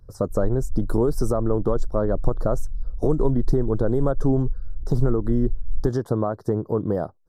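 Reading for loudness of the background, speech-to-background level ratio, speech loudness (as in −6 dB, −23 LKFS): −35.5 LKFS, 11.0 dB, −24.5 LKFS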